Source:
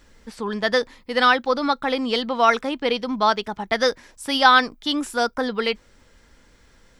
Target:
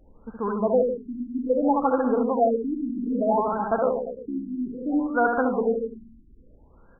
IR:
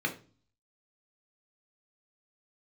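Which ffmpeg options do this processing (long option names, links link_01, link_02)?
-filter_complex "[0:a]asettb=1/sr,asplit=3[link_01][link_02][link_03];[link_01]atrim=end=3.814[link_04];[link_02]atrim=start=3.81:end=4.49,asetpts=PTS-STARTPTS,afade=type=in:duration=0.004:curve=qsin,afade=type=out:start_time=0.676:duration=0.004:curve=qsin,tremolo=f=67:d=0.75[link_05];[link_03]atrim=start=4.486[link_06];[link_04][link_05]acrossfade=duration=0.004:curve1=hsin:curve2=qsin[link_07];[link_07][link_06]acrossfade=duration=0.004:curve1=qsin:curve2=hsin,aecho=1:1:70|150.5|243.1|349.5|472:0.631|0.398|0.251|0.158|0.1,afftfilt=real='re*lt(b*sr/1024,340*pow(1700/340,0.5+0.5*sin(2*PI*0.61*pts/sr)))':imag='im*lt(b*sr/1024,340*pow(1700/340,0.5+0.5*sin(2*PI*0.61*pts/sr)))':win_size=1024:overlap=0.75"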